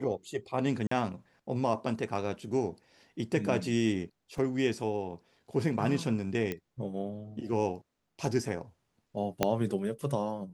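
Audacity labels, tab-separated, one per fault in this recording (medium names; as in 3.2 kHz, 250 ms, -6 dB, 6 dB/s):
0.870000	0.910000	dropout 44 ms
4.380000	4.380000	dropout 3.7 ms
6.520000	6.520000	pop -20 dBFS
9.430000	9.430000	pop -10 dBFS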